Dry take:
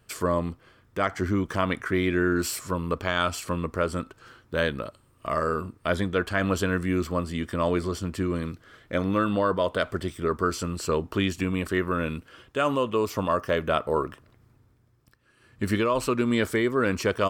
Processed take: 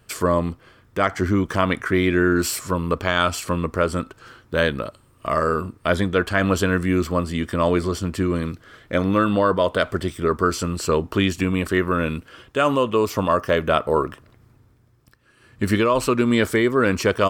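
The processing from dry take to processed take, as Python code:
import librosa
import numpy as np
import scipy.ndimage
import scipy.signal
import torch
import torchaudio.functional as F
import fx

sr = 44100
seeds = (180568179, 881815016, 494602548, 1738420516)

y = F.gain(torch.from_numpy(x), 5.5).numpy()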